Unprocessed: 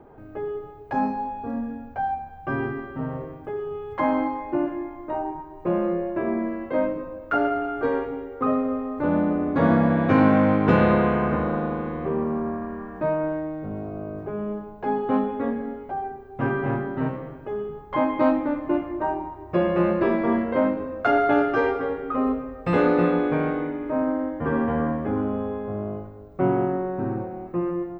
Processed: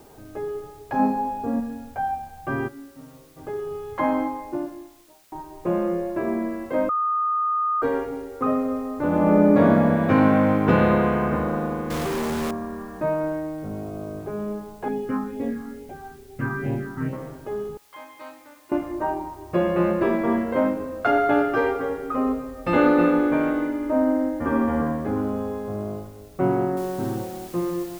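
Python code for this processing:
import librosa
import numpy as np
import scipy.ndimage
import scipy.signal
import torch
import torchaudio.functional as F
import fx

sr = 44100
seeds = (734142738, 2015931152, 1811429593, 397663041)

y = fx.peak_eq(x, sr, hz=360.0, db=5.5, octaves=2.6, at=(0.99, 1.6))
y = fx.comb_fb(y, sr, f0_hz=280.0, decay_s=0.43, harmonics='all', damping=0.0, mix_pct=90, at=(2.67, 3.36), fade=0.02)
y = fx.studio_fade_out(y, sr, start_s=4.02, length_s=1.3)
y = fx.reverb_throw(y, sr, start_s=9.08, length_s=0.41, rt60_s=2.2, drr_db=-5.0)
y = fx.quant_companded(y, sr, bits=2, at=(11.9, 12.51))
y = fx.phaser_stages(y, sr, stages=4, low_hz=540.0, high_hz=1300.0, hz=2.3, feedback_pct=25, at=(14.88, 17.13))
y = fx.differentiator(y, sr, at=(17.77, 18.72))
y = fx.comb(y, sr, ms=3.4, depth=0.63, at=(22.57, 24.82))
y = fx.noise_floor_step(y, sr, seeds[0], at_s=26.77, before_db=-58, after_db=-46, tilt_db=0.0)
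y = fx.edit(y, sr, fx.bleep(start_s=6.89, length_s=0.93, hz=1230.0, db=-20.0), tone=tone)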